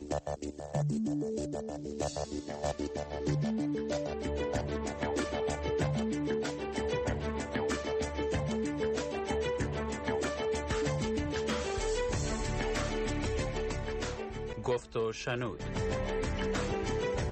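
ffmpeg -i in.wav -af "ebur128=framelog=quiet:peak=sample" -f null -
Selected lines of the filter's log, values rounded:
Integrated loudness:
  I:         -34.1 LUFS
  Threshold: -44.1 LUFS
Loudness range:
  LRA:         1.9 LU
  Threshold: -54.1 LUFS
  LRA low:   -35.2 LUFS
  LRA high:  -33.3 LUFS
Sample peak:
  Peak:      -21.5 dBFS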